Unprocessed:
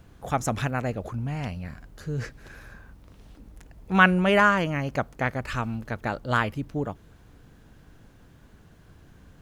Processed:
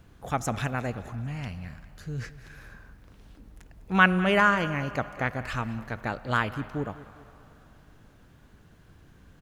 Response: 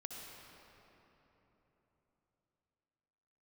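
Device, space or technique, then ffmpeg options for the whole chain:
filtered reverb send: -filter_complex "[0:a]asettb=1/sr,asplit=3[a][b][c];[a]atrim=end=0.914[d];[b]atrim=start=0.91:end=2.58,asetpts=PTS-STARTPTS,afade=t=in:d=0.004:c=qsin,afade=t=out:st=1.666:d=0.004:c=qsin,equalizer=f=570:t=o:w=2.1:g=-6[e];[c]atrim=start=2.576[f];[d][e]acrossfade=d=0.004:c1=hsin:c2=qsin[g];[g][f]acrossfade=d=0.004:c1=qsin:c2=hsin,aecho=1:1:201|402|603|804:0.126|0.0604|0.029|0.0139,asplit=2[h][i];[i]highpass=f=580:w=0.5412,highpass=f=580:w=1.3066,lowpass=4.9k[j];[1:a]atrim=start_sample=2205[k];[j][k]afir=irnorm=-1:irlink=0,volume=-10dB[l];[h][l]amix=inputs=2:normalize=0,volume=-2.5dB"

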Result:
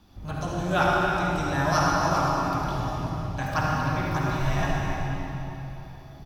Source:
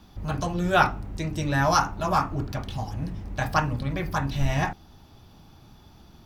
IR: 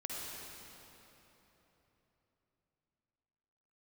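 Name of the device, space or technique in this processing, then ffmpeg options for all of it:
cave: -filter_complex "[0:a]aecho=1:1:307:0.282[a];[1:a]atrim=start_sample=2205[b];[a][b]afir=irnorm=-1:irlink=0,volume=-1dB"

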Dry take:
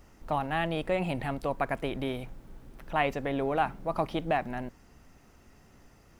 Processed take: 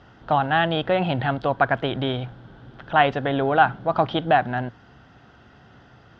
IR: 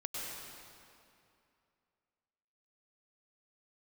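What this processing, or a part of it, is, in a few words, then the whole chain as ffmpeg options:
guitar cabinet: -af "highpass=76,equalizer=f=120:t=q:w=4:g=8,equalizer=f=750:t=q:w=4:g=5,equalizer=f=1.5k:t=q:w=4:g=10,equalizer=f=2.3k:t=q:w=4:g=-6,equalizer=f=3.3k:t=q:w=4:g=9,lowpass=f=4.4k:w=0.5412,lowpass=f=4.4k:w=1.3066,volume=6.5dB"

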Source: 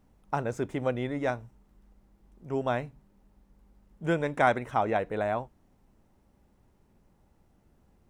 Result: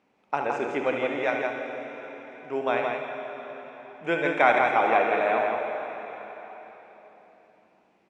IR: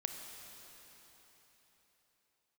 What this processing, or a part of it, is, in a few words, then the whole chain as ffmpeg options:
station announcement: -filter_complex "[0:a]highpass=350,lowpass=4.7k,equalizer=f=2.4k:t=o:w=0.37:g=10,aecho=1:1:72.89|166.2:0.355|0.562[a];[1:a]atrim=start_sample=2205[b];[a][b]afir=irnorm=-1:irlink=0,volume=4dB"

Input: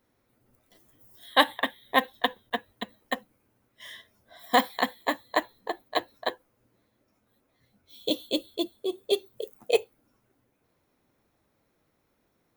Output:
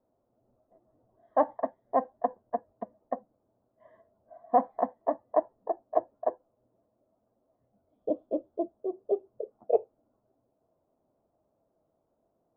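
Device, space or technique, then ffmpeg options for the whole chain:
under water: -af "lowpass=f=1.1k:w=0.5412,lowpass=f=1.1k:w=1.3066,equalizer=f=440:t=o:w=2.7:g=4.5,equalizer=f=650:t=o:w=0.34:g=11.5,volume=-8dB"

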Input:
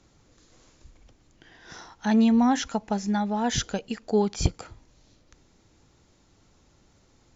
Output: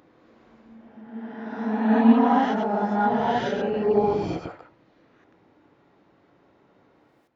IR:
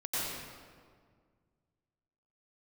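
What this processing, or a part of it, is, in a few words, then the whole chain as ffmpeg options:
ghost voice: -filter_complex "[0:a]lowpass=2.4k,aemphasis=mode=reproduction:type=bsi,lowshelf=f=250:g=-4.5,areverse[a];[1:a]atrim=start_sample=2205[b];[a][b]afir=irnorm=-1:irlink=0,areverse,highpass=330"

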